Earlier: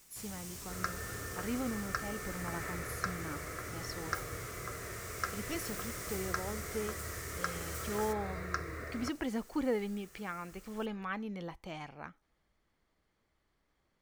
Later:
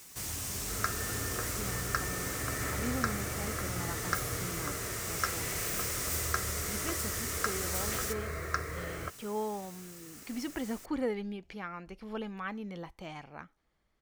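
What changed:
speech: entry +1.35 s; first sound +9.5 dB; second sound +3.5 dB

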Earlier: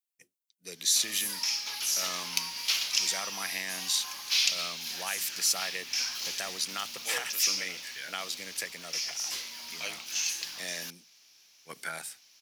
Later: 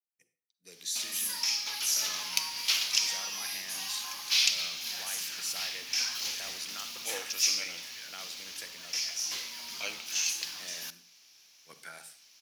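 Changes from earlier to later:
speech -10.5 dB; reverb: on, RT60 0.45 s

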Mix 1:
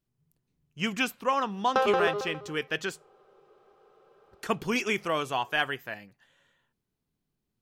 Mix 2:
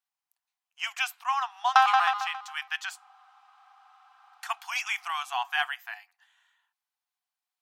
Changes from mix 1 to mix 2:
background +8.0 dB; master: add brick-wall FIR high-pass 690 Hz

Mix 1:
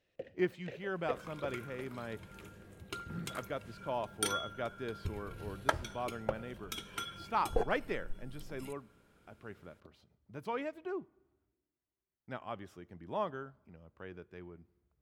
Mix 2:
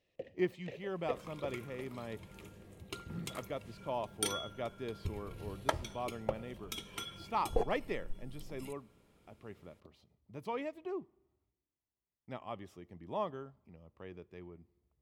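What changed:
speech: send -8.0 dB; master: add peaking EQ 1.5 kHz -14 dB 0.23 oct

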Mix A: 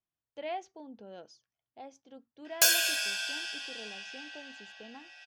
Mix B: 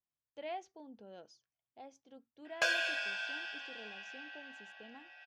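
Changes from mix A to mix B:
speech -5.0 dB; background: add band-pass 190–2200 Hz

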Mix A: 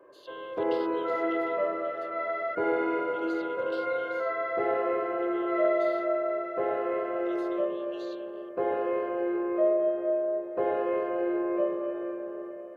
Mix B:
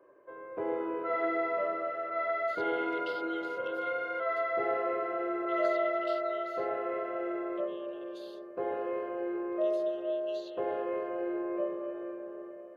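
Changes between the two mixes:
speech: entry +2.35 s; first sound -5.5 dB

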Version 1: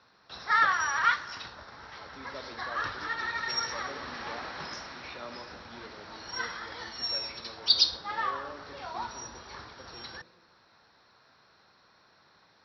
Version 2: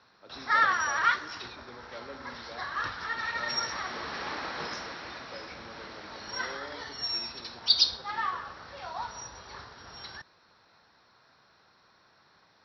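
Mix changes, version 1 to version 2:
speech: entry -1.80 s; second sound +4.0 dB

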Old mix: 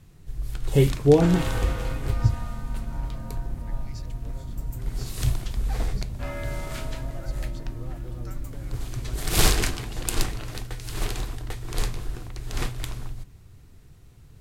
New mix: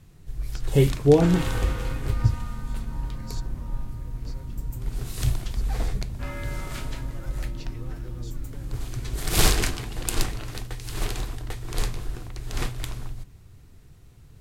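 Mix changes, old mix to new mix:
speech: entry -1.70 s; second sound: add peaking EQ 660 Hz -14 dB 0.25 oct

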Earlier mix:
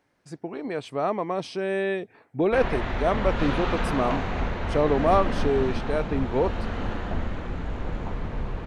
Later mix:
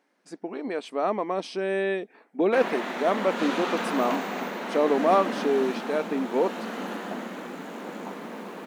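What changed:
background: remove low-pass 4.5 kHz 12 dB/octave; master: add brick-wall FIR high-pass 180 Hz

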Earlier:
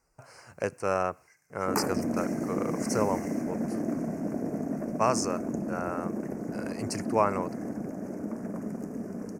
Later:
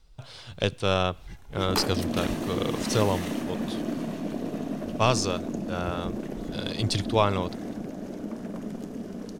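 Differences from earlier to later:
speech: remove high-pass 430 Hz 6 dB/octave; first sound: remove rippled Chebyshev high-pass 1.5 kHz, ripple 9 dB; master: remove Butterworth band-stop 3.5 kHz, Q 0.94

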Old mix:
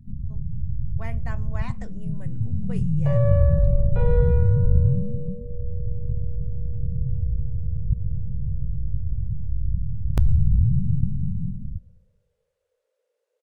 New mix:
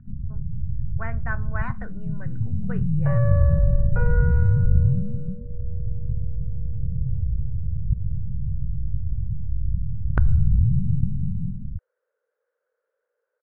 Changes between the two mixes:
second sound: send off; master: add resonant low-pass 1.5 kHz, resonance Q 5.8

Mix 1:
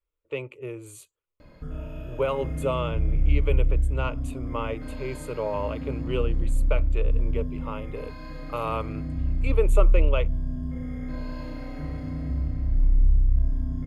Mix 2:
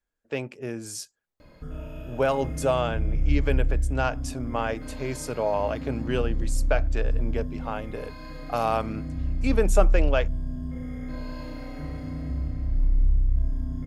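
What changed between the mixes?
speech: remove static phaser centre 1.1 kHz, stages 8; master: add tone controls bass -2 dB, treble +4 dB

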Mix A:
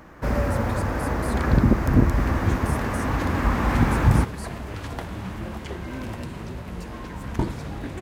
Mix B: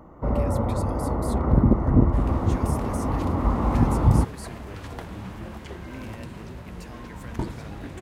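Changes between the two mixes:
first sound: add Savitzky-Golay filter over 65 samples; second sound -4.5 dB

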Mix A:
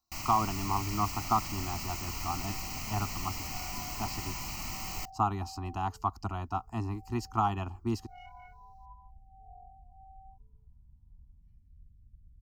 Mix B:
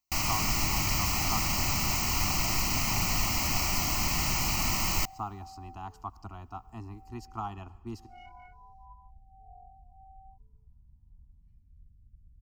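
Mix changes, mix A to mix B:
speech -10.5 dB; first sound +9.5 dB; reverb: on, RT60 1.5 s

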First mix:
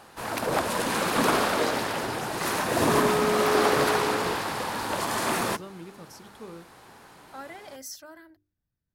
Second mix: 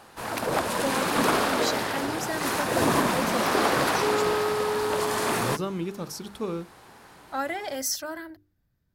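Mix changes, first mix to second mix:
speech +11.5 dB; second sound: entry +1.10 s

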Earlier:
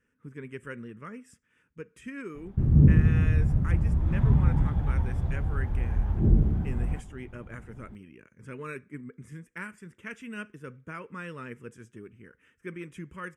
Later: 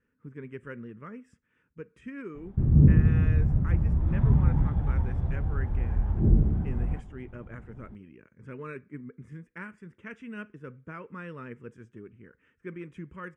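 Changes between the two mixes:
speech: add distance through air 50 m; master: add treble shelf 2.8 kHz -10.5 dB

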